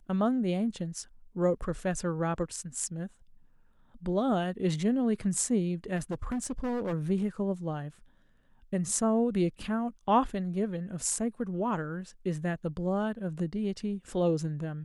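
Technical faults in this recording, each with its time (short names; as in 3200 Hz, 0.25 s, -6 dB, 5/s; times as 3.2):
5.96–6.94 clipped -28.5 dBFS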